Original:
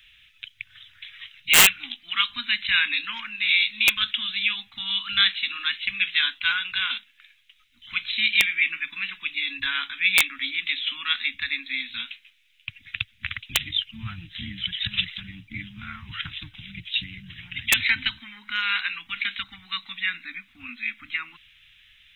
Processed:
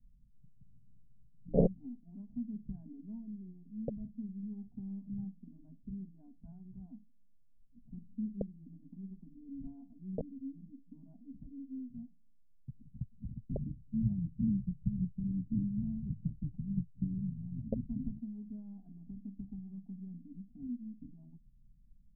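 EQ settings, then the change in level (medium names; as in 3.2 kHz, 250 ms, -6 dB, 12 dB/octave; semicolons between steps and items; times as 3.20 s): steep low-pass 540 Hz 48 dB/octave; static phaser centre 330 Hz, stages 6; +9.5 dB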